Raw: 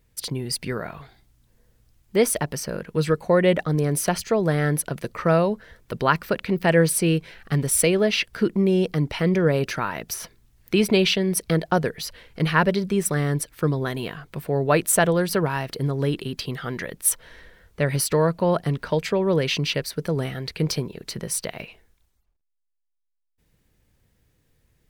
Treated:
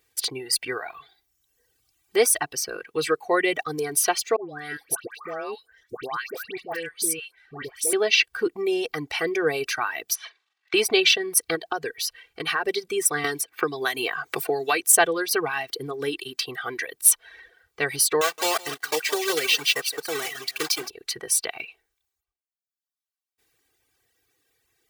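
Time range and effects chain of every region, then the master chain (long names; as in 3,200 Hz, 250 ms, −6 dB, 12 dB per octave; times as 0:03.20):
0:04.36–0:07.93: output level in coarse steps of 14 dB + all-pass dispersion highs, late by 138 ms, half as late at 1,300 Hz
0:10.15–0:10.74: transient designer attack +3 dB, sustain +11 dB + flat-topped band-pass 1,800 Hz, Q 0.58 + double-tracking delay 43 ms −8.5 dB
0:11.55–0:12.65: notch filter 2,100 Hz, Q 15 + downward compressor 5 to 1, threshold −21 dBFS
0:13.24–0:14.89: high-pass filter 140 Hz 6 dB per octave + multiband upward and downward compressor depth 100%
0:18.21–0:20.90: one scale factor per block 3 bits + high-pass filter 370 Hz 6 dB per octave + single-tap delay 167 ms −9 dB
whole clip: comb filter 2.6 ms, depth 82%; reverb reduction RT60 1.1 s; high-pass filter 920 Hz 6 dB per octave; level +3 dB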